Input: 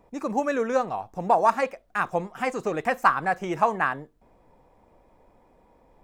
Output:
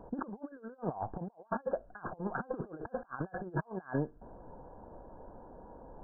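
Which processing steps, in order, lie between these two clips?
peaking EQ 1.2 kHz -6 dB 0.35 oct; compressor with a negative ratio -37 dBFS, ratio -0.5; brick-wall FIR low-pass 1.7 kHz; trim -2 dB

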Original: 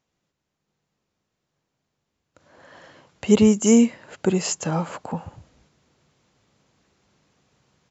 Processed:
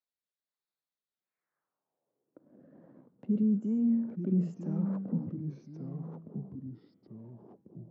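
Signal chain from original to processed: local Wiener filter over 15 samples; high-pass 110 Hz 24 dB/octave; de-hum 230.1 Hz, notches 21; reverse; compression 12:1, threshold -25 dBFS, peak gain reduction 16 dB; reverse; waveshaping leveller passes 1; peak limiter -24 dBFS, peak gain reduction 8 dB; rotary cabinet horn 1.2 Hz; ever faster or slower copies 257 ms, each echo -3 st, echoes 2, each echo -6 dB; band-pass sweep 4 kHz -> 220 Hz, 1.09–2.57 s; trim +5.5 dB

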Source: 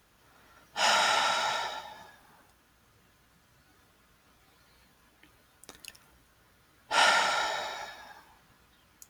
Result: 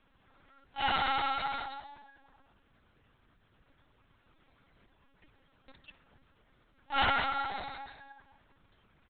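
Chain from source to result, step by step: bass shelf 310 Hz +5.5 dB; comb 3.7 ms, depth 97%; LPC vocoder at 8 kHz pitch kept; trim -7.5 dB

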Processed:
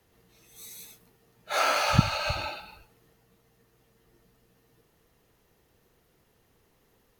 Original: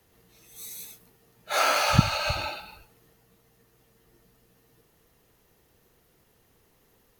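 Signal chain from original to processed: treble shelf 7.3 kHz -5 dB; trim -1.5 dB

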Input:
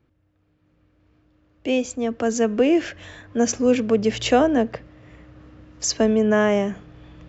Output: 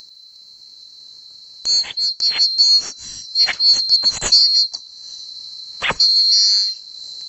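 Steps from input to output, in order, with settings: split-band scrambler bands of 4 kHz; bass shelf 380 Hz +7 dB; in parallel at -1 dB: upward compressor, threshold -21 dBFS; on the sum: trim -1.5 dB

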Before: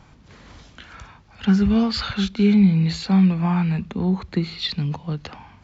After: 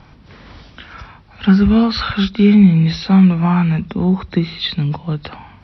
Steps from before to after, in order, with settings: knee-point frequency compression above 3.5 kHz 1.5:1; dynamic bell 1.3 kHz, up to +4 dB, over -44 dBFS, Q 4.1; trim +6 dB

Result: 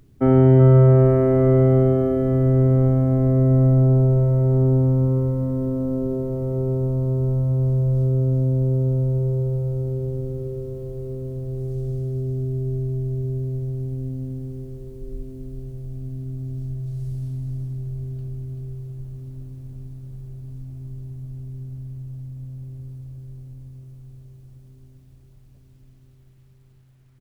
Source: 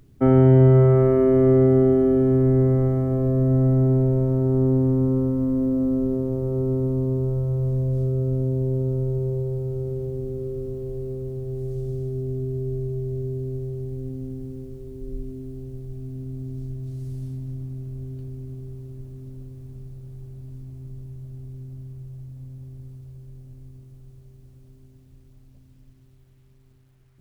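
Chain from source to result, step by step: multi-tap echo 61/378/384/656/877 ms -19/-18/-6.5/-17/-16.5 dB

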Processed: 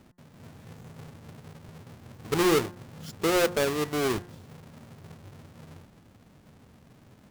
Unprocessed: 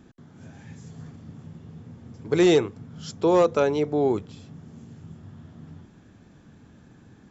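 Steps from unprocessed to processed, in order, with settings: square wave that keeps the level; de-hum 177.2 Hz, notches 11; trim -8 dB

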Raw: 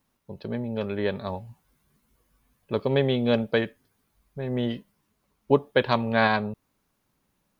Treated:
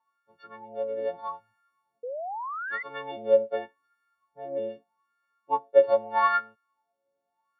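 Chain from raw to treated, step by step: partials quantised in pitch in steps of 4 st; wah-wah 0.81 Hz 550–1500 Hz, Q 10; painted sound rise, 2.03–2.83 s, 470–2100 Hz -42 dBFS; trim +8 dB

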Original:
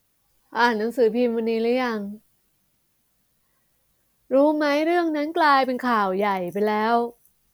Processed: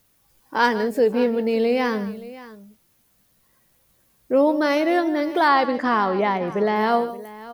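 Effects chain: 5.48–6.76 s: low-pass 5.2 kHz 12 dB/octave; in parallel at +1 dB: compression, threshold -29 dBFS, peak gain reduction 15 dB; on the sum: multi-tap echo 155/574 ms -15/-17.5 dB; trim -1.5 dB

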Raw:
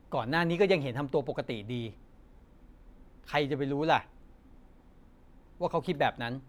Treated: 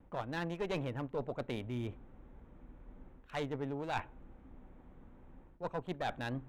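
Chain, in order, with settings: local Wiener filter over 9 samples; Chebyshev shaper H 4 -15 dB, 8 -44 dB, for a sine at -11 dBFS; reverse; compression 5:1, threshold -37 dBFS, peak gain reduction 16 dB; reverse; gate with hold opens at -51 dBFS; trim +1.5 dB

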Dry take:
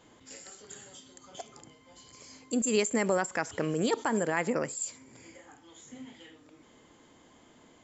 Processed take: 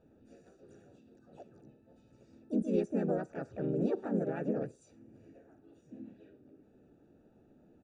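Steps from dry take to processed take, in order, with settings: harmony voices -3 st -2 dB, +4 st -3 dB; boxcar filter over 42 samples; trim -4 dB

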